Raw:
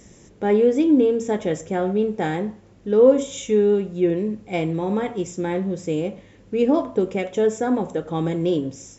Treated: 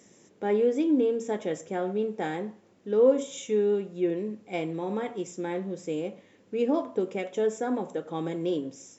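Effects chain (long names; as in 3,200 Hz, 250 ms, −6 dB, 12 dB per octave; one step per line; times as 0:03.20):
high-pass filter 210 Hz 12 dB per octave
level −6.5 dB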